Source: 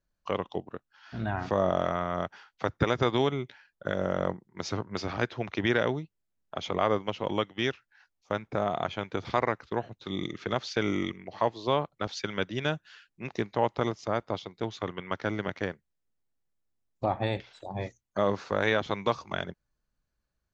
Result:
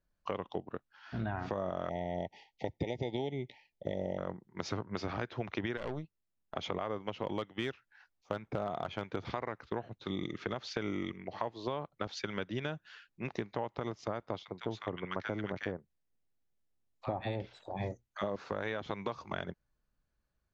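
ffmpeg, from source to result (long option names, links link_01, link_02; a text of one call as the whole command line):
ffmpeg -i in.wav -filter_complex "[0:a]asettb=1/sr,asplit=3[link_01][link_02][link_03];[link_01]atrim=end=1.894[link_04];[link_02]atrim=start=1.89:end=4.18,asetpts=PTS-STARTPTS,afade=type=in:duration=0.004:curve=qsin,afade=type=out:start_time=2.286:duration=0.004:curve=qsin,asuperstop=centerf=1300:order=20:qfactor=1.4[link_05];[link_03]atrim=start=4.176[link_06];[link_04][link_05]acrossfade=duration=0.004:curve1=hsin:curve2=qsin[link_07];[link_07][link_06]acrossfade=duration=0.004:curve1=qsin:curve2=hsin,asettb=1/sr,asplit=3[link_08][link_09][link_10];[link_08]atrim=end=5.774[link_11];[link_09]atrim=start=5.77:end=6.55,asetpts=PTS-STARTPTS,afade=type=in:duration=0.004:curve=qsin,afade=type=out:start_time=0.776:duration=0.004:curve=qsin,aeval=exprs='(tanh(25.1*val(0)+0.7)-tanh(0.7))/25.1':channel_layout=same[link_12];[link_10]atrim=start=6.546[link_13];[link_11][link_12]acrossfade=duration=0.004:curve1=hsin:curve2=qsin[link_14];[link_14][link_13]acrossfade=duration=0.004:curve1=qsin:curve2=hsin,asettb=1/sr,asplit=3[link_15][link_16][link_17];[link_15]atrim=end=7.174[link_18];[link_16]atrim=start=7.17:end=9.17,asetpts=PTS-STARTPTS,afade=type=in:duration=0.004:curve=qsin,afade=type=out:start_time=1.996:duration=0.004:curve=qsin,volume=18.5dB,asoftclip=hard,volume=-18.5dB[link_19];[link_17]atrim=start=9.166[link_20];[link_18][link_19]acrossfade=duration=0.004:curve1=hsin:curve2=qsin[link_21];[link_21][link_20]acrossfade=duration=0.004:curve1=qsin:curve2=hsin,asettb=1/sr,asplit=3[link_22][link_23][link_24];[link_22]atrim=end=14.434[link_25];[link_23]atrim=start=14.43:end=18.36,asetpts=PTS-STARTPTS,afade=type=in:duration=0.004:curve=qsin,afade=type=out:start_time=3.926:duration=0.004:curve=qsin,acrossover=split=1200[link_26][link_27];[link_26]adelay=50[link_28];[link_28][link_27]amix=inputs=2:normalize=0,atrim=end_sample=173313[link_29];[link_24]atrim=start=18.356[link_30];[link_25][link_29]acrossfade=duration=0.004:curve1=hsin:curve2=qsin[link_31];[link_31][link_30]acrossfade=duration=0.004:curve1=qsin:curve2=hsin,aemphasis=mode=reproduction:type=cd,alimiter=limit=-16dB:level=0:latency=1:release=98,acompressor=threshold=-32dB:ratio=6" out.wav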